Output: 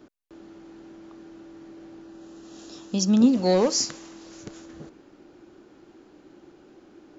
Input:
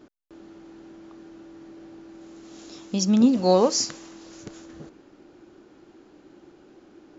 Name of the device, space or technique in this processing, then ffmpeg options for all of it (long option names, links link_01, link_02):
one-band saturation: -filter_complex "[0:a]asettb=1/sr,asplit=3[link_01][link_02][link_03];[link_01]atrim=end=2.034[link_04];[link_02]atrim=start=2.03:end=3.24,asetpts=PTS-STARTPTS,afade=type=in:duration=0.004:curve=qsin,afade=type=out:start_time=1.206:duration=0.004:curve=qsin,bandreject=frequency=2200:width=5.5[link_05];[link_03]atrim=start=3.236[link_06];[link_04][link_05]acrossfade=duration=0.004:curve1=hsin:curve2=qsin[link_07];[link_07][link_06]acrossfade=duration=0.004:curve1=qsin:curve2=hsin,acrossover=split=450|2800[link_08][link_09][link_10];[link_09]asoftclip=type=tanh:threshold=-22dB[link_11];[link_08][link_11][link_10]amix=inputs=3:normalize=0"